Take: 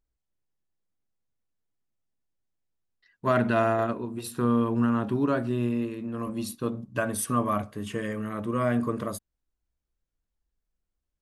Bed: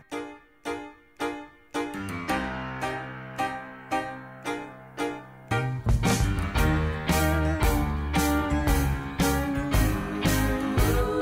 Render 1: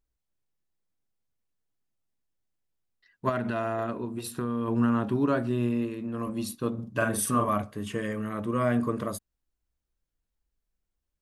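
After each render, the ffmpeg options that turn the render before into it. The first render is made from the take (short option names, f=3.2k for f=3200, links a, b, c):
-filter_complex "[0:a]asettb=1/sr,asplit=3[a][b][c];[a]atrim=end=3.294[d];[b]atrim=start=3.29:end=4.68,asetpts=PTS-STARTPTS,afade=t=in:d=0.004:c=qsin,afade=t=out:st=1.386:d=0.004:c=qsin,acompressor=threshold=-26dB:ratio=4:attack=3.2:release=140:knee=1:detection=peak[e];[c]atrim=start=4.676[f];[d][e]acrossfade=d=0.004:c1=hsin:c2=qsin[g];[g][f]acrossfade=d=0.004:c1=qsin:c2=hsin,asettb=1/sr,asplit=3[h][i][j];[h]atrim=end=6.744[k];[i]atrim=start=6.74:end=7.49,asetpts=PTS-STARTPTS,afade=t=in:d=0.004:c=qsin,afade=t=out:st=0.746:d=0.004:c=qsin,asplit=2[l][m];[m]adelay=44,volume=-3dB[n];[l][n]amix=inputs=2:normalize=0,atrim=end_sample=33075[o];[j]atrim=start=7.486[p];[k][o]acrossfade=d=0.004:c1=hsin:c2=qsin[q];[q][p]acrossfade=d=0.004:c1=qsin:c2=hsin"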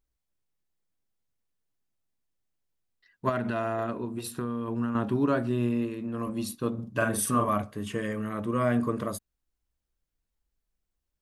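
-filter_complex "[0:a]asplit=2[a][b];[a]atrim=end=4.95,asetpts=PTS-STARTPTS,afade=t=out:st=4.27:d=0.68:silence=0.421697[c];[b]atrim=start=4.95,asetpts=PTS-STARTPTS,afade=t=in:d=0.004:c=hsin:silence=0.421697[d];[c][d]concat=n=2:v=0:a=1"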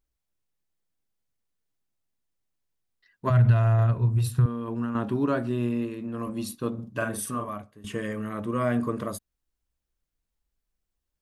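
-filter_complex "[0:a]asettb=1/sr,asplit=3[a][b][c];[a]atrim=end=3.304[d];[b]atrim=start=3.3:end=4.46,asetpts=PTS-STARTPTS,afade=t=in:d=0.004:c=qsin,afade=t=out:st=1.156:d=0.004:c=qsin,lowshelf=f=180:t=q:w=3:g=13.5[e];[c]atrim=start=4.456[f];[d][e]acrossfade=d=0.004:c1=hsin:c2=qsin[g];[g][f]acrossfade=d=0.004:c1=qsin:c2=hsin,asplit=2[h][i];[h]atrim=end=7.84,asetpts=PTS-STARTPTS,afade=t=out:st=6.72:d=1.12:silence=0.141254[j];[i]atrim=start=7.84,asetpts=PTS-STARTPTS,afade=t=in:d=0.004:c=hsin:silence=0.141254[k];[j][k]concat=n=2:v=0:a=1"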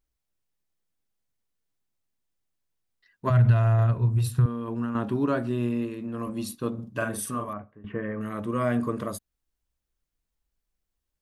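-filter_complex "[0:a]asettb=1/sr,asplit=3[a][b][c];[a]atrim=end=7.534[d];[b]atrim=start=7.53:end=8.21,asetpts=PTS-STARTPTS,afade=t=in:d=0.004:c=qsin,afade=t=out:st=0.676:d=0.004:c=qsin,lowpass=f=2k:w=0.5412,lowpass=f=2k:w=1.3066[e];[c]atrim=start=8.206[f];[d][e]acrossfade=d=0.004:c1=hsin:c2=qsin[g];[g][f]acrossfade=d=0.004:c1=qsin:c2=hsin"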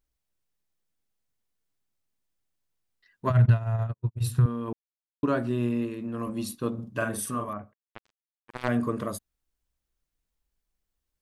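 -filter_complex "[0:a]asplit=3[a][b][c];[a]afade=t=out:st=3.31:d=0.02[d];[b]agate=range=-58dB:threshold=-20dB:ratio=16:release=100:detection=peak,afade=t=in:st=3.31:d=0.02,afade=t=out:st=4.2:d=0.02[e];[c]afade=t=in:st=4.2:d=0.02[f];[d][e][f]amix=inputs=3:normalize=0,asplit=3[g][h][i];[g]afade=t=out:st=7.72:d=0.02[j];[h]acrusher=bits=2:mix=0:aa=0.5,afade=t=in:st=7.72:d=0.02,afade=t=out:st=8.67:d=0.02[k];[i]afade=t=in:st=8.67:d=0.02[l];[j][k][l]amix=inputs=3:normalize=0,asplit=3[m][n][o];[m]atrim=end=4.73,asetpts=PTS-STARTPTS,afade=t=out:st=4.726:d=0.004:c=hsin[p];[n]atrim=start=4.73:end=5.23,asetpts=PTS-STARTPTS,volume=0[q];[o]atrim=start=5.23,asetpts=PTS-STARTPTS,afade=t=in:d=0.004:c=hsin[r];[p][q][r]concat=n=3:v=0:a=1"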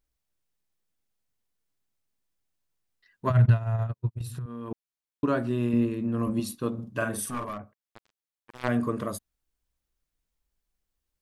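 -filter_complex "[0:a]asettb=1/sr,asplit=3[a][b][c];[a]atrim=end=4.214[d];[b]atrim=start=4.21:end=4.71,asetpts=PTS-STARTPTS,afade=t=in:d=0.004:c=qsin,afade=t=out:st=0.496:d=0.004:c=qsin,acompressor=threshold=-33dB:ratio=6:attack=3.2:release=140:knee=1:detection=peak[e];[c]atrim=start=4.706[f];[d][e]acrossfade=d=0.004:c1=hsin:c2=qsin[g];[g][f]acrossfade=d=0.004:c1=qsin:c2=hsin,asettb=1/sr,asplit=3[h][i][j];[h]atrim=end=5.734[k];[i]atrim=start=5.73:end=6.4,asetpts=PTS-STARTPTS,afade=t=in:d=0.004:c=qsin,afade=t=out:st=0.666:d=0.004:c=qsin,lowshelf=f=280:g=9[l];[j]atrim=start=6.396[m];[k][l]acrossfade=d=0.004:c1=hsin:c2=qsin[n];[n][m]acrossfade=d=0.004:c1=qsin:c2=hsin,asettb=1/sr,asplit=3[o][p][q];[o]atrim=end=7.294[r];[p]atrim=start=7.29:end=8.6,asetpts=PTS-STARTPTS,afade=t=in:d=0.004:c=qsin,afade=t=out:st=1.306:d=0.004:c=qsin,aeval=exprs='clip(val(0),-1,0.0237)':c=same[s];[q]atrim=start=8.596[t];[r][s]acrossfade=d=0.004:c1=hsin:c2=qsin[u];[u][t]acrossfade=d=0.004:c1=qsin:c2=hsin"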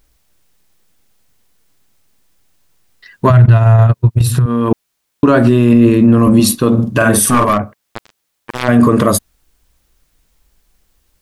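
-af "acontrast=79,alimiter=level_in=16.5dB:limit=-1dB:release=50:level=0:latency=1"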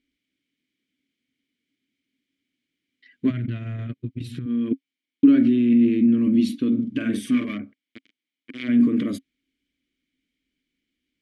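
-filter_complex "[0:a]asplit=3[a][b][c];[a]bandpass=f=270:t=q:w=8,volume=0dB[d];[b]bandpass=f=2.29k:t=q:w=8,volume=-6dB[e];[c]bandpass=f=3.01k:t=q:w=8,volume=-9dB[f];[d][e][f]amix=inputs=3:normalize=0"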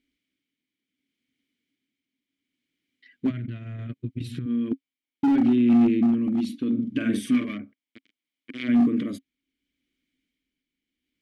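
-af "volume=13.5dB,asoftclip=hard,volume=-13.5dB,tremolo=f=0.7:d=0.5"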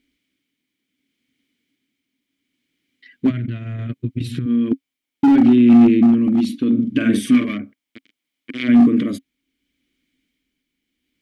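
-af "volume=8dB"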